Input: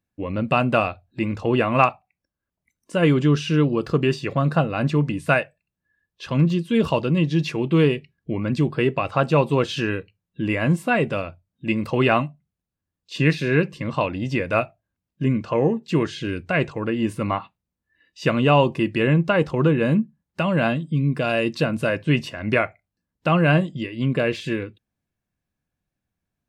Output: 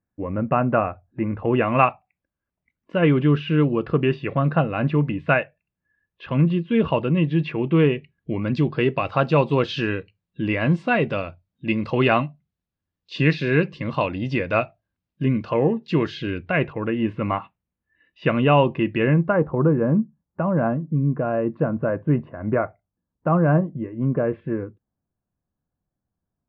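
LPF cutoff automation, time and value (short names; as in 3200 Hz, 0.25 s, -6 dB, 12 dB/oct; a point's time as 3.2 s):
LPF 24 dB/oct
1.29 s 1800 Hz
1.69 s 2900 Hz
7.97 s 2900 Hz
8.51 s 4800 Hz
16.14 s 4800 Hz
16.61 s 2900 Hz
18.96 s 2900 Hz
19.45 s 1300 Hz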